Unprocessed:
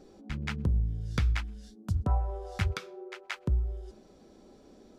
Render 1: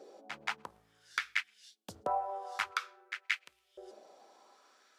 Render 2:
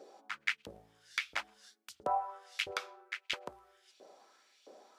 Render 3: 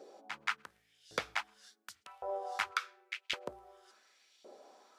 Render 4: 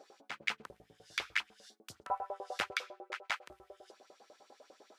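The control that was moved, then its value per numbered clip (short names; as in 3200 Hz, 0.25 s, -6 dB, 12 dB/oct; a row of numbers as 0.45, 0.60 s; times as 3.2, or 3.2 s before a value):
LFO high-pass, rate: 0.53, 1.5, 0.9, 10 Hz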